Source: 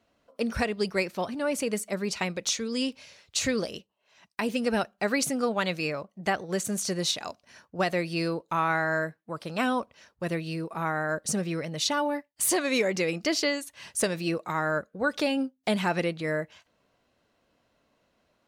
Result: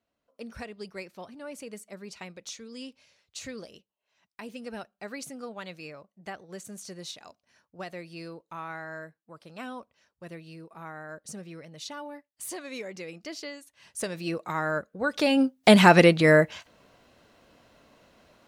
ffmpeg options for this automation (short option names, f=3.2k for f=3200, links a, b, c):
-af "volume=11.5dB,afade=t=in:st=13.77:d=0.69:silence=0.266073,afade=t=in:st=15.14:d=0.63:silence=0.237137"